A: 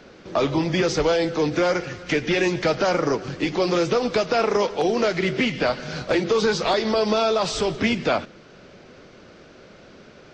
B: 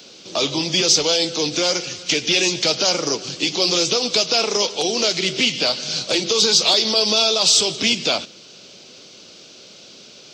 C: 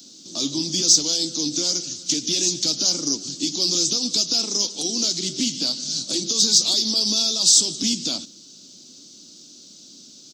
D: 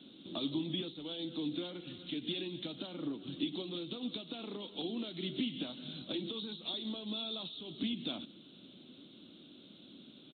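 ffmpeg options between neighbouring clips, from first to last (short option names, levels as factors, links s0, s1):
-af "highpass=110,equalizer=f=450:w=0.33:g=3.5,aexciter=amount=9.2:drive=5.9:freq=2700,volume=0.531"
-af "firequalizer=gain_entry='entry(110,0);entry(280,11);entry(430,-8);entry(1300,-8);entry(2400,-12);entry(3700,3);entry(6600,12)':delay=0.05:min_phase=1,volume=0.398"
-af "acompressor=threshold=0.0355:ratio=4,aresample=8000,aresample=44100,volume=0.841"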